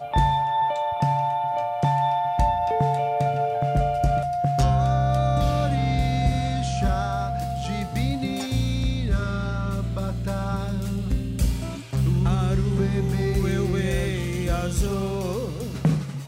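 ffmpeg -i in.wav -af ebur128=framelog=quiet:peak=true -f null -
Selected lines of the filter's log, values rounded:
Integrated loudness:
  I:         -24.2 LUFS
  Threshold: -34.2 LUFS
Loudness range:
  LRA:         4.0 LU
  Threshold: -44.2 LUFS
  LRA low:   -26.6 LUFS
  LRA high:  -22.5 LUFS
True peak:
  Peak:       -9.1 dBFS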